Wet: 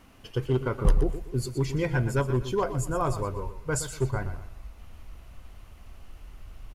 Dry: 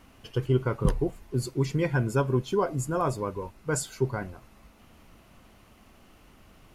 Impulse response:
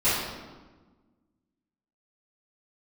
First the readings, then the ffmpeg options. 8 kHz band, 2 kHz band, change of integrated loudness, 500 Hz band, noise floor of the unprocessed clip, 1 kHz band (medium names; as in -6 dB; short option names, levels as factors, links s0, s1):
+0.5 dB, +0.5 dB, 0.0 dB, -1.0 dB, -57 dBFS, 0.0 dB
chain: -af "asoftclip=type=hard:threshold=0.141,asubboost=boost=7.5:cutoff=76,aecho=1:1:121|242|363:0.266|0.0851|0.0272"